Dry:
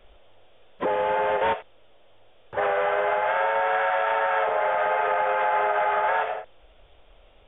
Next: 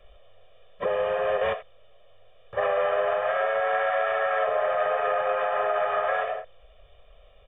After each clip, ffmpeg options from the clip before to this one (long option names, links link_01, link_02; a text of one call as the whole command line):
ffmpeg -i in.wav -af "aecho=1:1:1.7:0.96,volume=-4.5dB" out.wav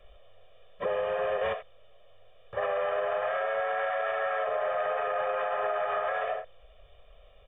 ffmpeg -i in.wav -af "alimiter=limit=-20dB:level=0:latency=1:release=44,volume=-1.5dB" out.wav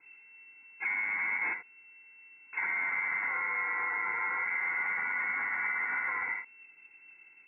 ffmpeg -i in.wav -af "lowpass=frequency=2300:width_type=q:width=0.5098,lowpass=frequency=2300:width_type=q:width=0.6013,lowpass=frequency=2300:width_type=q:width=0.9,lowpass=frequency=2300:width_type=q:width=2.563,afreqshift=-2700,volume=-3dB" out.wav